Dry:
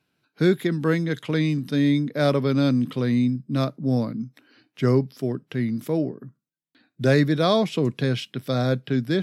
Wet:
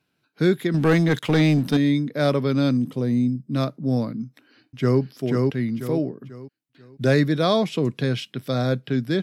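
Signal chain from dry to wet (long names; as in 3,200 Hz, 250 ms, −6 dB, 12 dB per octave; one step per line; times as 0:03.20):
0:00.74–0:01.77: leveller curve on the samples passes 2
0:02.77–0:03.47: flat-topped bell 2,200 Hz −9 dB 2.3 octaves
0:04.24–0:05.01: delay throw 490 ms, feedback 35%, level −2 dB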